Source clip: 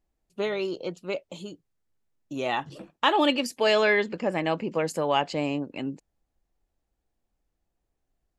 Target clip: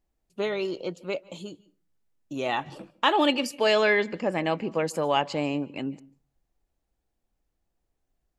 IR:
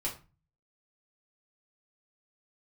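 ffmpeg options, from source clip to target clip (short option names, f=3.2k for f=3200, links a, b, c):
-filter_complex "[0:a]asplit=2[a][b];[1:a]atrim=start_sample=2205,adelay=141[c];[b][c]afir=irnorm=-1:irlink=0,volume=-25.5dB[d];[a][d]amix=inputs=2:normalize=0"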